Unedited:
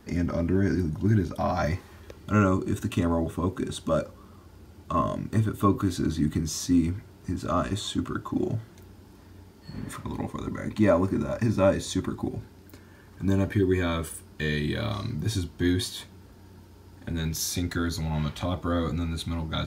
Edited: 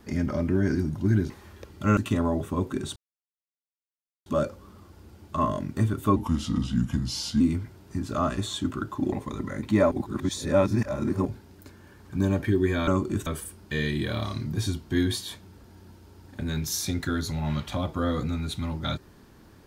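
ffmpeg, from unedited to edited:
-filter_complex "[0:a]asplit=11[a][b][c][d][e][f][g][h][i][j][k];[a]atrim=end=1.302[l];[b]atrim=start=1.768:end=2.442[m];[c]atrim=start=2.828:end=3.82,asetpts=PTS-STARTPTS,afade=t=out:st=0.988:d=0.004:c=hsin,apad=pad_dur=1.3[n];[d]atrim=start=3.82:end=5.724,asetpts=PTS-STARTPTS,afade=t=in:d=0.004:c=hsin[o];[e]atrim=start=5.72:end=6.74,asetpts=PTS-STARTPTS,asetrate=36162,aresample=44100,atrim=end_sample=54856,asetpts=PTS-STARTPTS[p];[f]atrim=start=6.736:end=8.462[q];[g]atrim=start=10.198:end=10.992[r];[h]atrim=start=10.988:end=12.332,asetpts=PTS-STARTPTS,areverse[s];[i]atrim=start=12.328:end=13.952[t];[j]atrim=start=2.438:end=2.832[u];[k]atrim=start=13.948[v];[l][m]acrossfade=d=0.004:c1=hsin:c2=hsin[w];[n][o]concat=n=2:v=0:a=1[x];[w][x]acrossfade=d=0.004:c1=hsin:c2=hsin[y];[y][p]acrossfade=d=0.004:c1=hsin:c2=hsin[z];[z][q]acrossfade=d=0.004:c1=hsin:c2=hsin[aa];[aa][r]acrossfade=d=0.004:c1=hsin:c2=hsin[ab];[ab][s]acrossfade=d=0.004:c1=hsin:c2=hsin[ac];[ac][t]acrossfade=d=0.004:c1=hsin:c2=hsin[ad];[ad][u]acrossfade=d=0.004:c1=hsin:c2=hsin[ae];[ae][v]acrossfade=d=0.004:c1=hsin:c2=hsin"

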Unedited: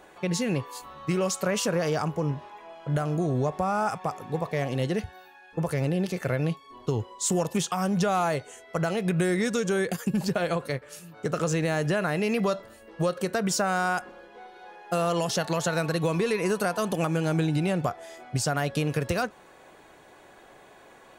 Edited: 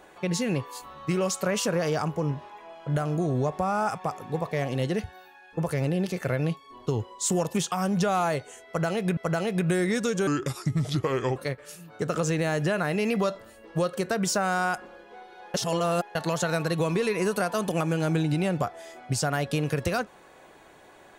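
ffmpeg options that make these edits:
-filter_complex "[0:a]asplit=6[a][b][c][d][e][f];[a]atrim=end=9.172[g];[b]atrim=start=8.668:end=9.774[h];[c]atrim=start=9.77:end=10.6,asetpts=PTS-STARTPTS,asetrate=33516,aresample=44100[i];[d]atrim=start=10.596:end=14.782[j];[e]atrim=start=14.778:end=15.392,asetpts=PTS-STARTPTS,areverse[k];[f]atrim=start=15.388[l];[g][h]acrossfade=d=0.004:c1=hsin:c2=hsin[m];[m][i]acrossfade=d=0.004:c1=hsin:c2=hsin[n];[n][j]acrossfade=d=0.004:c1=hsin:c2=hsin[o];[o][k]acrossfade=d=0.004:c1=hsin:c2=hsin[p];[p][l]acrossfade=d=0.004:c1=hsin:c2=hsin"

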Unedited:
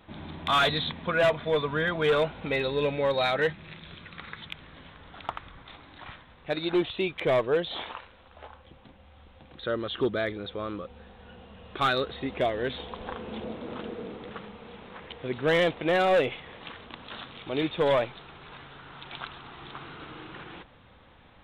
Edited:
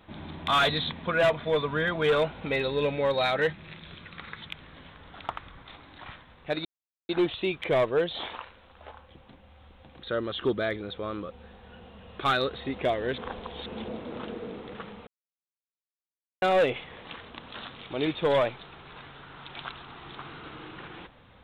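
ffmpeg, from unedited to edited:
-filter_complex "[0:a]asplit=6[a][b][c][d][e][f];[a]atrim=end=6.65,asetpts=PTS-STARTPTS,afade=t=out:st=6.646:d=0.004:c=hsin,apad=pad_dur=0.44[g];[b]atrim=start=6.65:end=12.742,asetpts=PTS-STARTPTS,afade=t=in:d=0.004:c=hsin[h];[c]atrim=start=12.738:end=13.222,asetpts=PTS-STARTPTS,areverse[i];[d]atrim=start=13.218:end=14.63,asetpts=PTS-STARTPTS,afade=t=out:st=1.408:d=0.004:c=hsin[j];[e]atrim=start=14.63:end=15.98,asetpts=PTS-STARTPTS,volume=0[k];[f]atrim=start=15.98,asetpts=PTS-STARTPTS,afade=t=in:d=0.004:c=hsin[l];[g][h]concat=n=2:v=0:a=1[m];[m][i]acrossfade=d=0.004:c1=hsin:c2=hsin[n];[j][k][l]concat=n=3:v=0:a=1[o];[n][o]acrossfade=d=0.004:c1=hsin:c2=hsin"

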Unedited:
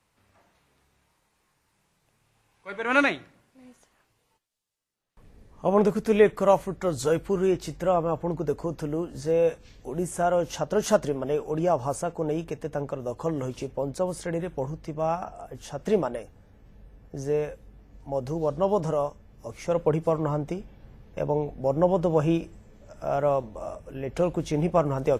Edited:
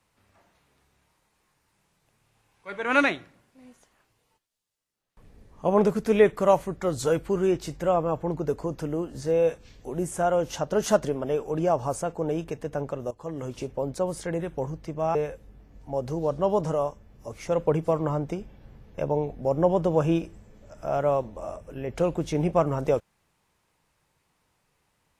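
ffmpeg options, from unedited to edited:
-filter_complex "[0:a]asplit=3[a][b][c];[a]atrim=end=13.11,asetpts=PTS-STARTPTS,afade=t=out:st=13.106:d=0.004:c=hsin:silence=0.177828[d];[b]atrim=start=13.11:end=15.152,asetpts=PTS-STARTPTS,afade=t=in:d=0.52:silence=0.177828[e];[c]atrim=start=17.338[f];[d][e]concat=n=2:v=0:a=1[g];[g][f]acrossfade=d=0.004:c1=hsin:c2=hsin"

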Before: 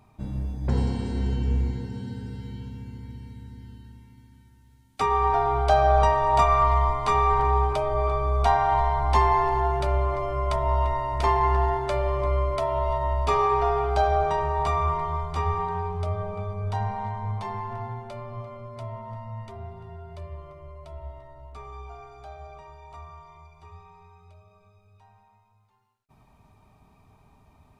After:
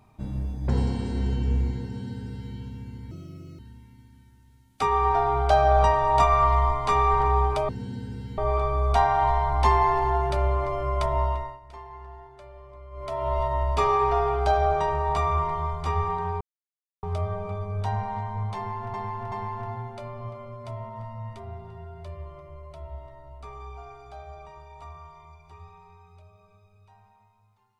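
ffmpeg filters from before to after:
-filter_complex "[0:a]asplit=10[a][b][c][d][e][f][g][h][i][j];[a]atrim=end=3.114[k];[b]atrim=start=3.11:end=3.78,asetpts=PTS-STARTPTS,asetrate=61740,aresample=44100[l];[c]atrim=start=3.776:end=7.882[m];[d]atrim=start=1.828:end=2.522[n];[e]atrim=start=7.878:end=11.1,asetpts=PTS-STARTPTS,afade=t=out:st=2.792:d=0.43:silence=0.0891251[o];[f]atrim=start=11.1:end=12.41,asetpts=PTS-STARTPTS,volume=-21dB[p];[g]atrim=start=12.41:end=15.91,asetpts=PTS-STARTPTS,afade=t=in:d=0.43:silence=0.0891251,afade=t=out:st=3.496:d=0.004:c=hsin,apad=pad_dur=0.62[q];[h]atrim=start=15.91:end=17.822,asetpts=PTS-STARTPTS,afade=t=in:d=0.004:c=hsin[r];[i]atrim=start=17.438:end=17.822[s];[j]atrim=start=17.438[t];[k][l]acrossfade=d=0.004:c1=hsin:c2=hsin[u];[u][m]acrossfade=d=0.004:c1=hsin:c2=hsin[v];[v][n]acrossfade=d=0.004:c1=hsin:c2=hsin[w];[o][p][q][r]concat=n=4:v=0:a=1[x];[w][x]acrossfade=d=0.004:c1=hsin:c2=hsin[y];[y][s]acrossfade=d=0.004:c1=hsin:c2=hsin[z];[z][t]acrossfade=d=0.004:c1=hsin:c2=hsin"

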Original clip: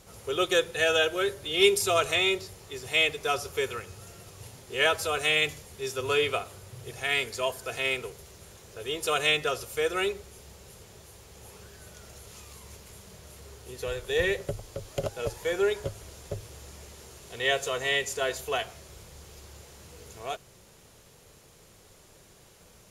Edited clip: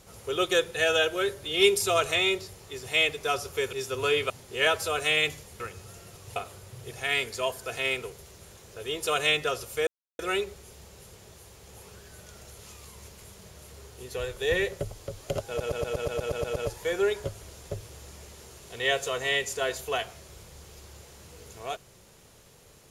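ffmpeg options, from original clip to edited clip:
-filter_complex "[0:a]asplit=15[a][b][c][d][e][f][g][h][i][j][k][l][m][n][o];[a]atrim=end=3.732[p];[b]atrim=start=5.788:end=6.362[q];[c]atrim=start=4.488:end=5.792[r];[d]atrim=start=3.728:end=4.492[s];[e]atrim=start=6.358:end=9.87,asetpts=PTS-STARTPTS,afade=t=out:st=3.508:d=0.004:c=hsin,apad=pad_dur=0.32[t];[f]atrim=start=9.87:end=15.282,asetpts=PTS-STARTPTS,afade=t=in:d=0.004:c=hsin[u];[g]atrim=start=15.158:end=15.282[v];[h]atrim=start=15.158:end=15.282[w];[i]atrim=start=15.158:end=15.282[x];[j]atrim=start=15.158:end=15.282[y];[k]atrim=start=15.158:end=15.282[z];[l]atrim=start=15.158:end=15.282[aa];[m]atrim=start=15.158:end=15.282[ab];[n]atrim=start=15.158:end=15.282[ac];[o]atrim=start=15.158[ad];[p][q]acrossfade=d=0.004:c1=hsin:c2=hsin[ae];[ae][r]acrossfade=d=0.004:c1=hsin:c2=hsin[af];[af][s]acrossfade=d=0.004:c1=hsin:c2=hsin[ag];[t][u]concat=n=2:v=0:a=1[ah];[ag][ah]acrossfade=d=0.004:c1=hsin:c2=hsin[ai];[ai][v]acrossfade=d=0.004:c1=hsin:c2=hsin[aj];[aj][w]acrossfade=d=0.004:c1=hsin:c2=hsin[ak];[ak][x]acrossfade=d=0.004:c1=hsin:c2=hsin[al];[al][y]acrossfade=d=0.004:c1=hsin:c2=hsin[am];[am][z]acrossfade=d=0.004:c1=hsin:c2=hsin[an];[an][aa]acrossfade=d=0.004:c1=hsin:c2=hsin[ao];[ao][ab]acrossfade=d=0.004:c1=hsin:c2=hsin[ap];[ap][ac]acrossfade=d=0.004:c1=hsin:c2=hsin[aq];[aq][ad]acrossfade=d=0.004:c1=hsin:c2=hsin"

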